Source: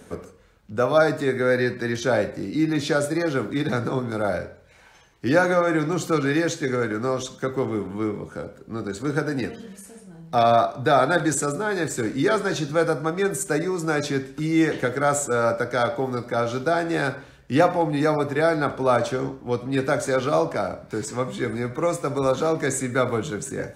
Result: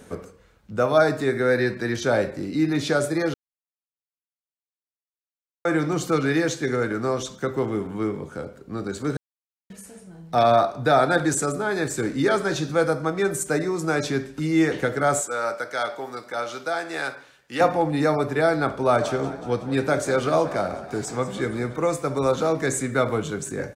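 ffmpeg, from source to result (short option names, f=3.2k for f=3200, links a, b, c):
-filter_complex "[0:a]asettb=1/sr,asplit=3[a][b][c];[a]atrim=end=15.214[d];[b]atrim=start=15.21:end=17.61,asetpts=PTS-STARTPTS,afade=t=in:d=0.004:c=qsin,afade=t=out:st=2.396:d=0.004:c=qsin,highpass=f=1k:p=1[e];[c]atrim=start=17.606[f];[d][e]acrossfade=d=0.004:c1=hsin:c2=qsin[g];[g][f]acrossfade=d=0.004:c1=qsin:c2=hsin,asplit=3[h][i][j];[h]afade=t=out:st=19:d=0.02[k];[i]asplit=7[l][m][n][o][p][q][r];[m]adelay=185,afreqshift=33,volume=-15dB[s];[n]adelay=370,afreqshift=66,volume=-19.3dB[t];[o]adelay=555,afreqshift=99,volume=-23.6dB[u];[p]adelay=740,afreqshift=132,volume=-27.9dB[v];[q]adelay=925,afreqshift=165,volume=-32.2dB[w];[r]adelay=1110,afreqshift=198,volume=-36.5dB[x];[l][s][t][u][v][w][x]amix=inputs=7:normalize=0,afade=t=in:st=19:d=0.02,afade=t=out:st=21.75:d=0.02[y];[j]afade=t=in:st=21.75:d=0.02[z];[k][y][z]amix=inputs=3:normalize=0,asplit=5[aa][ab][ac][ad][ae];[aa]atrim=end=3.34,asetpts=PTS-STARTPTS,afade=t=out:st=3.336:d=0.004:c=hsin[af];[ab]atrim=start=3.34:end=5.65,asetpts=PTS-STARTPTS,volume=0[ag];[ac]atrim=start=5.65:end=9.17,asetpts=PTS-STARTPTS,afade=t=in:d=0.004:c=hsin,afade=t=out:st=3.516:d=0.004:c=hsin[ah];[ad]atrim=start=9.17:end=9.7,asetpts=PTS-STARTPTS,volume=0[ai];[ae]atrim=start=9.7,asetpts=PTS-STARTPTS,afade=t=in:d=0.004:c=hsin[aj];[af][ag][ah][ai][aj]concat=n=5:v=0:a=1"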